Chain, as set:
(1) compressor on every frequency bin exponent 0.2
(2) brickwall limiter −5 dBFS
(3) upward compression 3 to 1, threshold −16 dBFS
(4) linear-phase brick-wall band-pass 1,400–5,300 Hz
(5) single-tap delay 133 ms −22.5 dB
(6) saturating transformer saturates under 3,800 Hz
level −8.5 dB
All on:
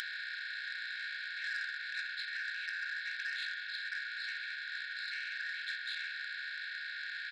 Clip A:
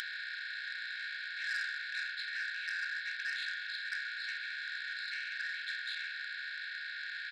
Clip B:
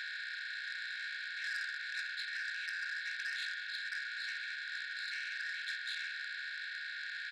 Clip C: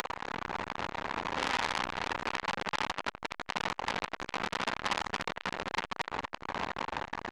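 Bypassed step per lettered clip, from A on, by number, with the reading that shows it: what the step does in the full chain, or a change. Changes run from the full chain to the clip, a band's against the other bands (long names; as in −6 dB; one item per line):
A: 2, change in momentary loudness spread +1 LU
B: 3, change in crest factor −2.0 dB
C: 4, 1 kHz band +16.0 dB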